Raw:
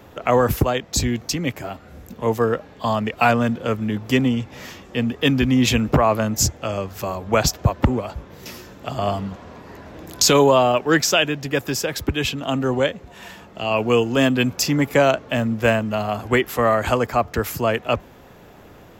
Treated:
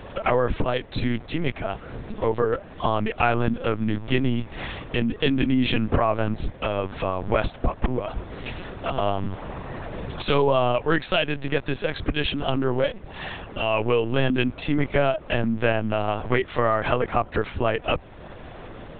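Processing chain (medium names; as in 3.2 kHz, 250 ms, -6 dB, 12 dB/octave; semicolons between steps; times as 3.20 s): compression 2:1, threshold -32 dBFS, peak gain reduction 12 dB; LPC vocoder at 8 kHz pitch kept; trim +6 dB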